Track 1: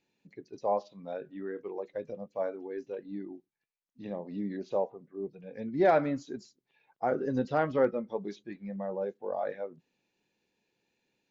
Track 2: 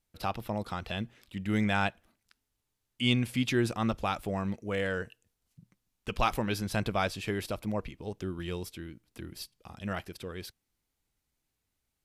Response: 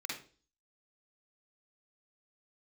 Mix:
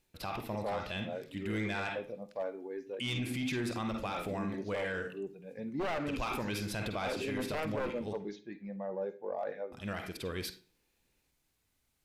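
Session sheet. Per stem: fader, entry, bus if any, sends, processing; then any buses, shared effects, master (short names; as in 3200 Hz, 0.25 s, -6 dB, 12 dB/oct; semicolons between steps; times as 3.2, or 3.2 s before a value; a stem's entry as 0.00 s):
-3.5 dB, 0.00 s, send -12 dB, one-sided fold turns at -24 dBFS
+3.0 dB, 0.00 s, muted 8.18–9.72, send -9 dB, auto duck -8 dB, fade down 0.20 s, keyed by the first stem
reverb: on, RT60 0.40 s, pre-delay 44 ms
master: soft clip -22.5 dBFS, distortion -17 dB; limiter -28 dBFS, peak gain reduction 5.5 dB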